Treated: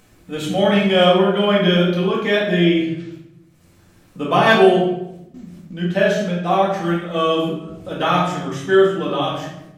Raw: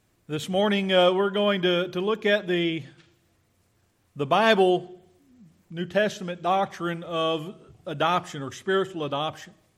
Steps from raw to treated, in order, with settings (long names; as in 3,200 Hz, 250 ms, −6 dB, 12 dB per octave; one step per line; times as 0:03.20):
noise gate with hold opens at −49 dBFS
upward compression, threshold −35 dBFS
rectangular room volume 250 cubic metres, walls mixed, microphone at 2 metres